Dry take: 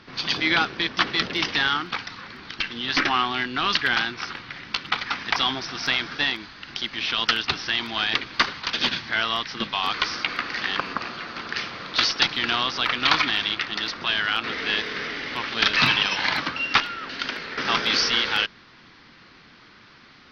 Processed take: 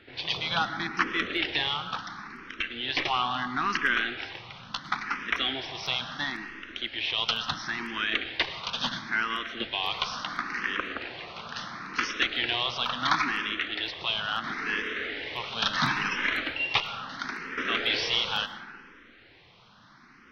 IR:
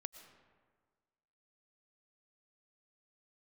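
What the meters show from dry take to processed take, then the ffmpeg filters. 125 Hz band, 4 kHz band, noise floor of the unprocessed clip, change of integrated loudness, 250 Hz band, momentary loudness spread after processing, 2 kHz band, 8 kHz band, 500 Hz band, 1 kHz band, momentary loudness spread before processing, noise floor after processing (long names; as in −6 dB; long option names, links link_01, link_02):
−4.0 dB, −6.0 dB, −51 dBFS, −5.5 dB, −5.0 dB, 11 LU, −5.0 dB, can't be measured, −4.5 dB, −4.5 dB, 10 LU, −55 dBFS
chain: -filter_complex "[0:a]equalizer=frequency=4700:width_type=o:width=0.37:gain=-7.5[link_01];[1:a]atrim=start_sample=2205[link_02];[link_01][link_02]afir=irnorm=-1:irlink=0,asplit=2[link_03][link_04];[link_04]afreqshift=0.73[link_05];[link_03][link_05]amix=inputs=2:normalize=1,volume=2.5dB"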